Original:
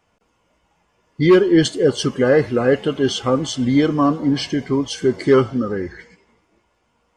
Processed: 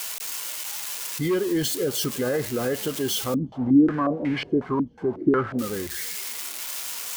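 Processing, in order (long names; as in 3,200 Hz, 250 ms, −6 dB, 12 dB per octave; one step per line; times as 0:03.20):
spike at every zero crossing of −13.5 dBFS
brickwall limiter −10.5 dBFS, peak gain reduction 6 dB
0:03.34–0:05.59: low-pass on a step sequencer 5.5 Hz 230–2,200 Hz
level −7 dB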